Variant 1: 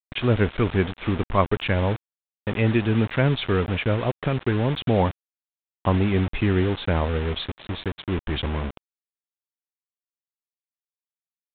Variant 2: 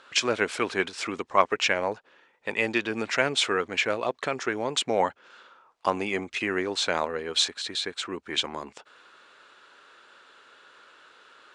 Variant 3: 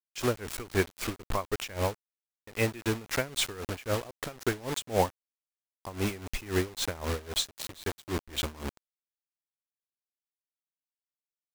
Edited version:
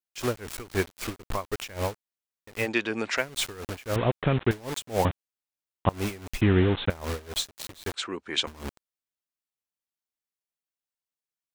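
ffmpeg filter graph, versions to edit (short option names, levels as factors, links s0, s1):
-filter_complex "[1:a]asplit=2[s0][s1];[0:a]asplit=3[s2][s3][s4];[2:a]asplit=6[s5][s6][s7][s8][s9][s10];[s5]atrim=end=2.69[s11];[s0]atrim=start=2.59:end=3.25[s12];[s6]atrim=start=3.15:end=3.962[s13];[s2]atrim=start=3.958:end=4.512[s14];[s7]atrim=start=4.508:end=5.052[s15];[s3]atrim=start=5.048:end=5.892[s16];[s8]atrim=start=5.888:end=6.412[s17];[s4]atrim=start=6.408:end=6.902[s18];[s9]atrim=start=6.898:end=7.942[s19];[s1]atrim=start=7.938:end=8.472[s20];[s10]atrim=start=8.468[s21];[s11][s12]acrossfade=d=0.1:c1=tri:c2=tri[s22];[s22][s13]acrossfade=d=0.1:c1=tri:c2=tri[s23];[s23][s14]acrossfade=d=0.004:c1=hsin:c2=hsin[s24];[s24][s15]acrossfade=d=0.004:c1=hsin:c2=hsin[s25];[s25][s16]acrossfade=d=0.004:c1=hsin:c2=hsin[s26];[s26][s17]acrossfade=d=0.004:c1=hsin:c2=hsin[s27];[s27][s18]acrossfade=d=0.004:c1=hsin:c2=hsin[s28];[s28][s19]acrossfade=d=0.004:c1=hsin:c2=hsin[s29];[s29][s20]acrossfade=d=0.004:c1=hsin:c2=hsin[s30];[s30][s21]acrossfade=d=0.004:c1=hsin:c2=hsin"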